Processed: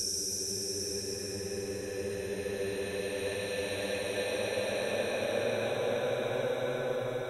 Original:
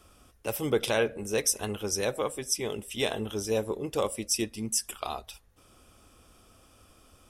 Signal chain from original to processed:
extreme stretch with random phases 47×, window 0.10 s, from 0:01.95
level −5 dB

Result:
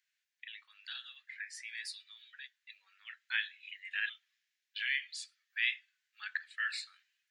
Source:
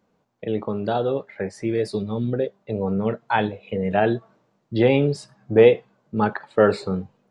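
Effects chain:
0:04.09–0:05.53: frequency shifter −380 Hz
Chebyshev high-pass filter 1,700 Hz, order 5
level −2 dB

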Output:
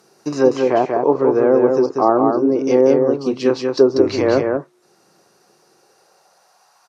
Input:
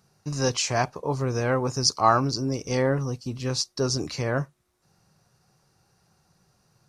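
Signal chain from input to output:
treble cut that deepens with the level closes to 650 Hz, closed at −20 dBFS
in parallel at −2 dB: speech leveller 0.5 s
on the sum: high-pass filter sweep 340 Hz → 880 Hz, 0:05.60–0:06.70
0:03.97–0:04.37: hum with harmonics 100 Hz, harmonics 27, −38 dBFS −6 dB per octave
on a send: single-tap delay 189 ms −4 dB
on the sum: level +3.5 dB

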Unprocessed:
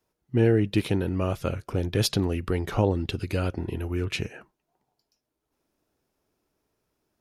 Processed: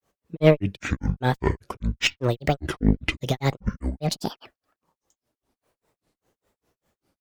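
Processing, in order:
granular cloud 173 ms, grains 5 per second, spray 25 ms, pitch spread up and down by 12 semitones
harmonic generator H 4 −19 dB, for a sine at −10 dBFS
level +8 dB

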